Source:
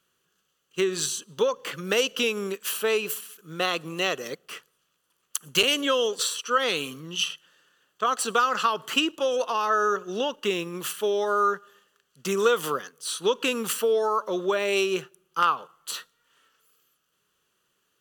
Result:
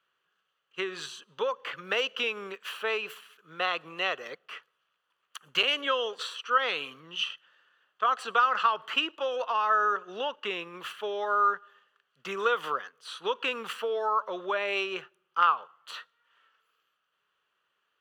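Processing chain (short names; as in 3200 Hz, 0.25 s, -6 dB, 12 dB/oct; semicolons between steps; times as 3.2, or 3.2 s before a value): three-band isolator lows -15 dB, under 580 Hz, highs -23 dB, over 3400 Hz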